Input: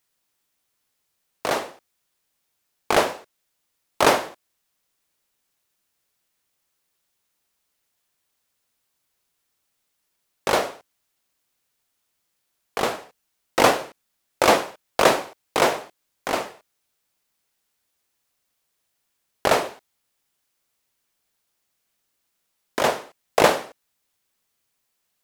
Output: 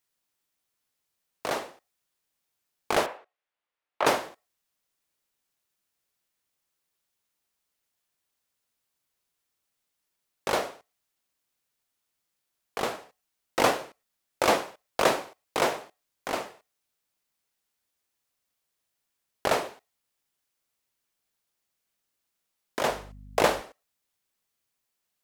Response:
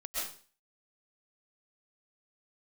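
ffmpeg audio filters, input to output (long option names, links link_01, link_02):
-filter_complex "[0:a]asettb=1/sr,asplit=3[link_01][link_02][link_03];[link_01]atrim=end=3.064[link_04];[link_02]atrim=start=3.06:end=4.06,asetpts=PTS-STARTPTS,afade=type=in:duration=0.004:curve=qsin,afade=type=out:start_time=0.996:duration=0.004:curve=qsin,acrossover=split=400 3200:gain=0.2 1 0.0891[link_05][link_06][link_07];[link_05][link_06][link_07]amix=inputs=3:normalize=0[link_08];[link_03]atrim=start=4.056[link_09];[link_04][link_08]acrossfade=duration=0.004:curve1=hsin:curve2=qsin[link_10];[link_10][link_09]acrossfade=duration=0.004:curve1=qsin:curve2=hsin,asettb=1/sr,asplit=3[link_11][link_12][link_13];[link_11]atrim=end=22.894[link_14];[link_12]atrim=start=22.89:end=23.61,asetpts=PTS-STARTPTS,afade=type=in:duration=0.004:curve=qsin,afade=type=out:start_time=0.716:duration=0.004:curve=qsin,aeval=exprs='val(0)+0.0112*(sin(2*PI*50*n/s)+sin(2*PI*2*50*n/s)/2+sin(2*PI*3*50*n/s)/3+sin(2*PI*4*50*n/s)/4+sin(2*PI*5*50*n/s)/5)':channel_layout=same[link_15];[link_13]atrim=start=23.606[link_16];[link_14][link_15]acrossfade=duration=0.004:curve1=hsin:curve2=qsin[link_17];[link_17][link_16]acrossfade=duration=0.004:curve1=qsin:curve2=hsin,asplit=2[link_18][link_19];[1:a]atrim=start_sample=2205,afade=type=out:start_time=0.16:duration=0.01,atrim=end_sample=7497[link_20];[link_19][link_20]afir=irnorm=-1:irlink=0,volume=-23dB[link_21];[link_18][link_21]amix=inputs=2:normalize=0,volume=-6.5dB"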